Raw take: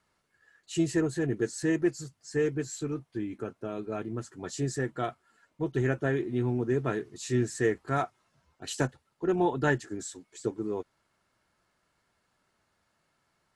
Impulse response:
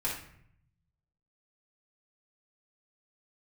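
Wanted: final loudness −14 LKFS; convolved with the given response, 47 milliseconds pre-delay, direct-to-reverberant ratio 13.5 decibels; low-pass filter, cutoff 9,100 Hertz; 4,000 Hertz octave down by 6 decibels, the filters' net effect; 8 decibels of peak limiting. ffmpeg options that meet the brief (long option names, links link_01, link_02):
-filter_complex "[0:a]lowpass=9100,equalizer=frequency=4000:width_type=o:gain=-8,alimiter=limit=-21.5dB:level=0:latency=1,asplit=2[link_01][link_02];[1:a]atrim=start_sample=2205,adelay=47[link_03];[link_02][link_03]afir=irnorm=-1:irlink=0,volume=-19dB[link_04];[link_01][link_04]amix=inputs=2:normalize=0,volume=20dB"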